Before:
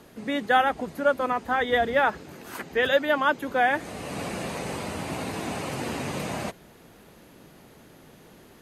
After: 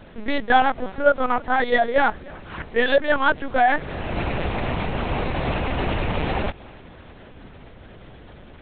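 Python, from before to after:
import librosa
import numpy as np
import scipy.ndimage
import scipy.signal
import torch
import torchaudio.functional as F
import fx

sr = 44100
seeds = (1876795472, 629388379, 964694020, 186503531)

p1 = fx.rider(x, sr, range_db=4, speed_s=0.5)
p2 = x + F.gain(torch.from_numpy(p1), 3.0).numpy()
p3 = fx.echo_feedback(p2, sr, ms=303, feedback_pct=28, wet_db=-23.5)
p4 = fx.lpc_vocoder(p3, sr, seeds[0], excitation='pitch_kept', order=8)
y = F.gain(torch.from_numpy(p4), -2.0).numpy()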